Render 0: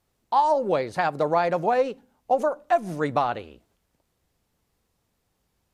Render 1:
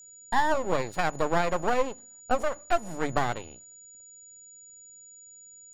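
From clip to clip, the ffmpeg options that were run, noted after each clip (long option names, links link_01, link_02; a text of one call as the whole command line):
ffmpeg -i in.wav -af "aeval=exprs='max(val(0),0)':channel_layout=same,aeval=exprs='val(0)+0.00398*sin(2*PI*6900*n/s)':channel_layout=same,bandreject=frequency=50:width_type=h:width=6,bandreject=frequency=100:width_type=h:width=6,bandreject=frequency=150:width_type=h:width=6" out.wav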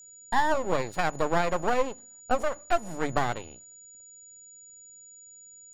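ffmpeg -i in.wav -af anull out.wav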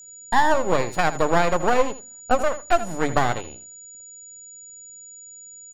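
ffmpeg -i in.wav -af "aecho=1:1:80:0.2,volume=6dB" out.wav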